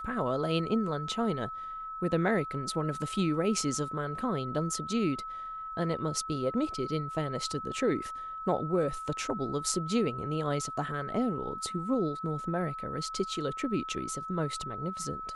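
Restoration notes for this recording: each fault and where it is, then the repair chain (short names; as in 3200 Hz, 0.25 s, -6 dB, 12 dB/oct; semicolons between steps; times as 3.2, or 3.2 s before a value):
tone 1300 Hz -37 dBFS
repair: notch 1300 Hz, Q 30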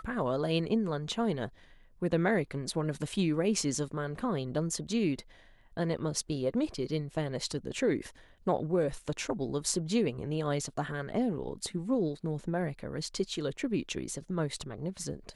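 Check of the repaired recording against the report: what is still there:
none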